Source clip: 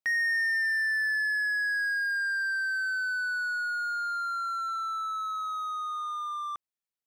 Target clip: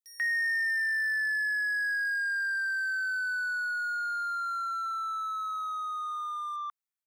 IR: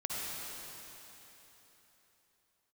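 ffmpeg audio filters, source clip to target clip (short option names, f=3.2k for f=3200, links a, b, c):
-filter_complex "[0:a]highpass=f=950:w=0.5412,highpass=f=950:w=1.3066,equalizer=f=2.8k:w=1.8:g=-5,acrossover=split=5200[a][b];[a]adelay=140[c];[c][b]amix=inputs=2:normalize=0"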